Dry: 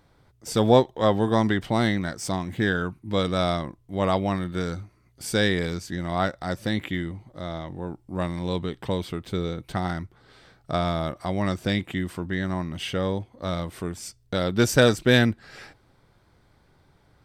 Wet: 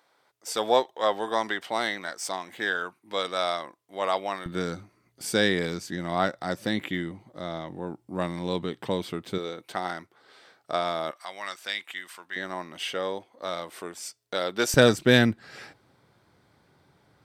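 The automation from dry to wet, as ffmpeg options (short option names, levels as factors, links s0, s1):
-af "asetnsamples=n=441:p=0,asendcmd='4.46 highpass f 180;9.38 highpass f 410;11.11 highpass f 1200;12.36 highpass f 460;14.74 highpass f 120',highpass=600"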